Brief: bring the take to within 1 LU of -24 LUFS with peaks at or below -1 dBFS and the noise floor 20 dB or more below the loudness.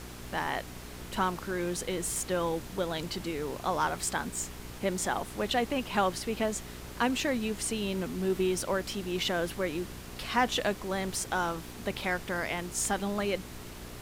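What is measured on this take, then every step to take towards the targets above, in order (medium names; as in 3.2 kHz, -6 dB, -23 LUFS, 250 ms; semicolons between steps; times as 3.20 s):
hum 60 Hz; highest harmonic 420 Hz; hum level -45 dBFS; noise floor -44 dBFS; noise floor target -52 dBFS; loudness -32.0 LUFS; peak level -13.5 dBFS; loudness target -24.0 LUFS
-> de-hum 60 Hz, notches 7; noise print and reduce 8 dB; trim +8 dB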